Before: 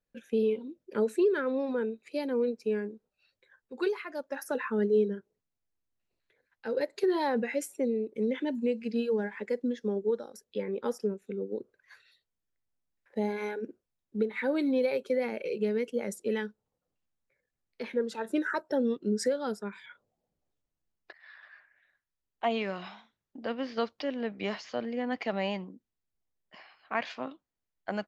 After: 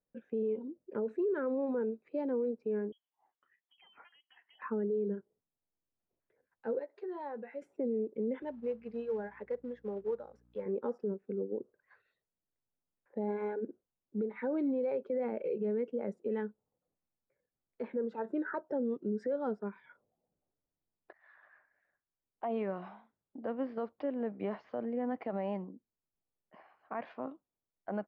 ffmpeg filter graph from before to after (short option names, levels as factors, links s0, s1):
-filter_complex "[0:a]asettb=1/sr,asplit=3[s0][s1][s2];[s0]atrim=end=2.924[s3];[s1]atrim=start=2.92:end=4.62,asetpts=PTS-STARTPTS,afade=t=in:d=0.004:c=qsin,afade=t=out:st=1.696:d=0.004:c=qsin,acompressor=threshold=0.00501:ratio=4:attack=3.2:release=140:knee=1:detection=peak,lowpass=f=3000:t=q:w=0.5098,lowpass=f=3000:t=q:w=0.6013,lowpass=f=3000:t=q:w=0.9,lowpass=f=3000:t=q:w=2.563,afreqshift=-3500[s4];[s2]atrim=start=4.616[s5];[s3][s4]acrossfade=d=0.004:c1=hsin:c2=qsin[s6];[s6][s5]acrossfade=d=0.004:c1=qsin:c2=hsin,asettb=1/sr,asplit=3[s7][s8][s9];[s7]atrim=end=6.794[s10];[s8]atrim=start=6.79:end=7.62,asetpts=PTS-STARTPTS,afade=t=in:d=0.004:c=qsin,afade=t=out:st=0.826:d=0.004:c=qsin,highpass=f=790:p=1,asplit=2[s11][s12];[s12]adelay=14,volume=0.316[s13];[s11][s13]amix=inputs=2:normalize=0,atrim=end_sample=36603,acompressor=threshold=0.00398:ratio=1.5:attack=3.2:release=140:knee=1:detection=peak[s14];[s9]atrim=start=7.616[s15];[s10][s14]acrossfade=d=0.004:c1=hsin:c2=qsin[s16];[s16][s15]acrossfade=d=0.004:c1=qsin:c2=hsin,asettb=1/sr,asplit=3[s17][s18][s19];[s17]atrim=end=8.424[s20];[s18]atrim=start=8.42:end=10.66,asetpts=PTS-STARTPTS,afade=t=in:d=0.004:c=qsin,afade=t=out:st=2.236:d=0.004:c=qsin,equalizer=f=270:t=o:w=1.3:g=-13,aeval=exprs='val(0)+0.000708*(sin(2*PI*60*n/s)+sin(2*PI*2*60*n/s)/2+sin(2*PI*3*60*n/s)/3+sin(2*PI*4*60*n/s)/4+sin(2*PI*5*60*n/s)/5)':c=same,acrusher=bits=4:mode=log:mix=0:aa=0.000001[s21];[s19]atrim=start=10.656[s22];[s20][s21]acrossfade=d=0.004:c1=hsin:c2=qsin[s23];[s23][s22]acrossfade=d=0.004:c1=qsin:c2=hsin,lowpass=1000,lowshelf=f=86:g=-9.5,alimiter=level_in=1.33:limit=0.0631:level=0:latency=1:release=44,volume=0.75"